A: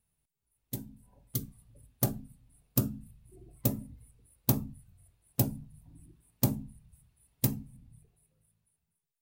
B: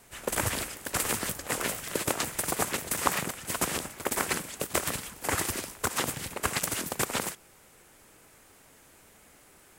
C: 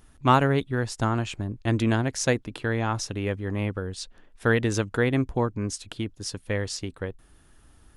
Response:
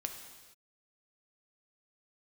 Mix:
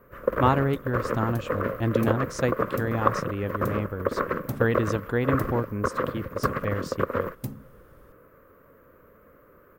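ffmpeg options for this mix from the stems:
-filter_complex "[0:a]volume=0.631[s0];[1:a]acrossover=split=5500[s1][s2];[s2]acompressor=threshold=0.00562:ratio=4:attack=1:release=60[s3];[s1][s3]amix=inputs=2:normalize=0,firequalizer=gain_entry='entry(370,0);entry(530,9);entry(790,-17);entry(1100,6);entry(2300,-11);entry(3500,-19);entry(9700,-25);entry(14000,5)':delay=0.05:min_phase=1,acontrast=34,volume=0.891[s4];[2:a]adelay=150,volume=0.841[s5];[s0][s4][s5]amix=inputs=3:normalize=0,highshelf=f=2800:g=-10.5"

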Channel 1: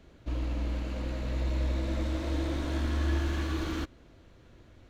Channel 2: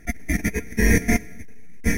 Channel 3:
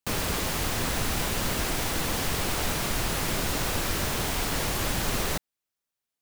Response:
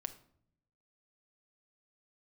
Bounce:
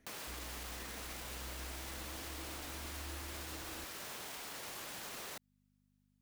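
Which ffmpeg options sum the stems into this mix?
-filter_complex "[0:a]volume=0.178[s0];[1:a]volume=0.106[s1];[2:a]aeval=exprs='val(0)+0.00178*(sin(2*PI*50*n/s)+sin(2*PI*2*50*n/s)/2+sin(2*PI*3*50*n/s)/3+sin(2*PI*4*50*n/s)/4+sin(2*PI*5*50*n/s)/5)':c=same,volume=0.668[s2];[s1][s2]amix=inputs=2:normalize=0,highpass=f=550:p=1,alimiter=level_in=2.99:limit=0.0631:level=0:latency=1,volume=0.335,volume=1[s3];[s0][s3]amix=inputs=2:normalize=0,acompressor=threshold=0.00355:ratio=1.5"

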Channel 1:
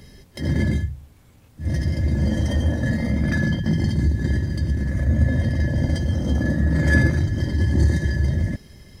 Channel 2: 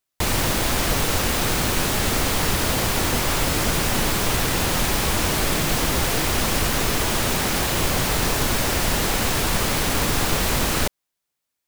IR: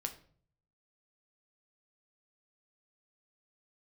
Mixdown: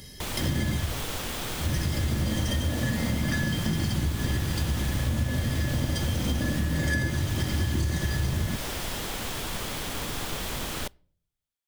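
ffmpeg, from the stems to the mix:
-filter_complex "[0:a]highshelf=f=3700:g=12,volume=0.631,asplit=2[s0][s1];[s1]volume=0.282[s2];[1:a]volume=0.237,asplit=2[s3][s4];[s4]volume=0.133[s5];[2:a]atrim=start_sample=2205[s6];[s2][s5]amix=inputs=2:normalize=0[s7];[s7][s6]afir=irnorm=-1:irlink=0[s8];[s0][s3][s8]amix=inputs=3:normalize=0,equalizer=f=3300:t=o:w=0.24:g=5.5,acompressor=threshold=0.0708:ratio=6"

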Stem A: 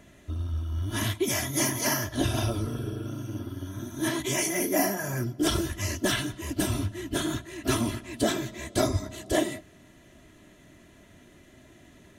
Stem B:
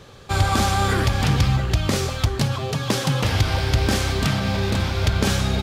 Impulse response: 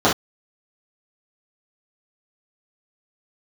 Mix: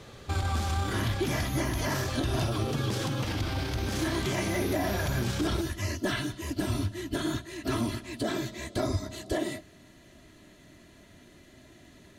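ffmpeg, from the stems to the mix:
-filter_complex "[0:a]acrossover=split=2600[s0][s1];[s1]acompressor=threshold=0.01:ratio=4:attack=1:release=60[s2];[s0][s2]amix=inputs=2:normalize=0,equalizer=f=4400:w=3.7:g=7.5,volume=0.944[s3];[1:a]alimiter=limit=0.0891:level=0:latency=1:release=20,volume=0.631[s4];[s3][s4]amix=inputs=2:normalize=0,alimiter=limit=0.106:level=0:latency=1:release=84"

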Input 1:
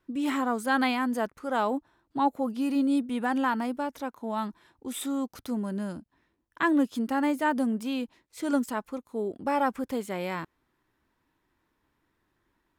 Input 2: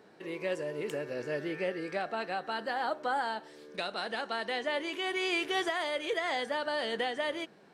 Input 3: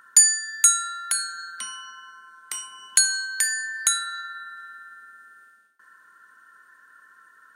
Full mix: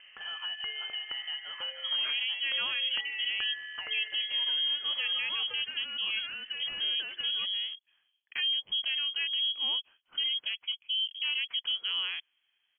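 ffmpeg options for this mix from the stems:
-filter_complex "[0:a]acontrast=37,adelay=1750,volume=0.299[s0];[1:a]highpass=f=510:w=0.5412,highpass=f=510:w=1.3066,acompressor=threshold=0.00631:ratio=6,volume=1.12[s1];[2:a]equalizer=f=790:w=0.32:g=-9,volume=0.562[s2];[s0][s1]amix=inputs=2:normalize=0,equalizer=f=500:w=0.72:g=9,alimiter=limit=0.0631:level=0:latency=1:release=77,volume=1[s3];[s2][s3]amix=inputs=2:normalize=0,highpass=110,lowpass=f=3000:t=q:w=0.5098,lowpass=f=3000:t=q:w=0.6013,lowpass=f=3000:t=q:w=0.9,lowpass=f=3000:t=q:w=2.563,afreqshift=-3500"

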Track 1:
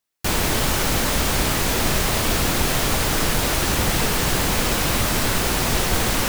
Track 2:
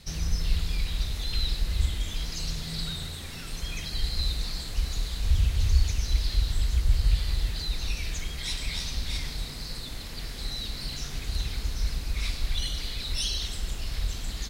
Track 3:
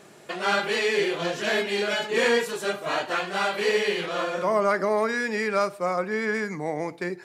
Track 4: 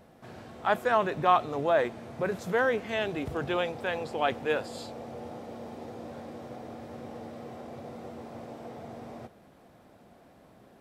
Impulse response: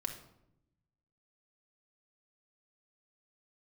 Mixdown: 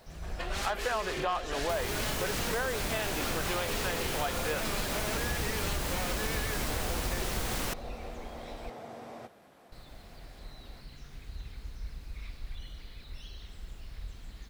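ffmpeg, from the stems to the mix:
-filter_complex "[0:a]adelay=1450,volume=0.299[s0];[1:a]acrossover=split=2700[s1][s2];[s2]acompressor=threshold=0.00316:ratio=4:attack=1:release=60[s3];[s1][s3]amix=inputs=2:normalize=0,acrusher=bits=8:mix=0:aa=0.000001,volume=0.251,asplit=3[s4][s5][s6];[s4]atrim=end=8.7,asetpts=PTS-STARTPTS,afade=t=out:st=8.696:d=0.004:c=hsin[s7];[s5]atrim=start=8.7:end=9.72,asetpts=PTS-STARTPTS,volume=0[s8];[s6]atrim=start=9.72,asetpts=PTS-STARTPTS,afade=t=in:d=0.004:c=hsin[s9];[s7][s8][s9]concat=n=3:v=0:a=1[s10];[2:a]highpass=420,aeval=exprs='0.0531*(abs(mod(val(0)/0.0531+3,4)-2)-1)':c=same,adelay=100,volume=0.596[s11];[3:a]lowshelf=f=380:g=-10.5,asoftclip=type=tanh:threshold=0.112,volume=1.33[s12];[s0][s10][s11][s12]amix=inputs=4:normalize=0,acompressor=threshold=0.0398:ratio=6"

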